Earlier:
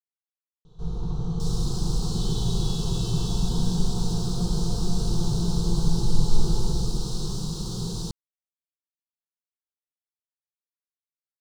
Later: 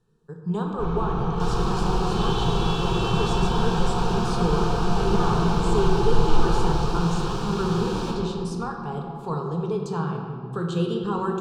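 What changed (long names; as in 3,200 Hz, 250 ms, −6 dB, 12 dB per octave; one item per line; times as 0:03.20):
speech: unmuted
master: remove drawn EQ curve 170 Hz 0 dB, 2,400 Hz −24 dB, 4,000 Hz +2 dB, 9,400 Hz +8 dB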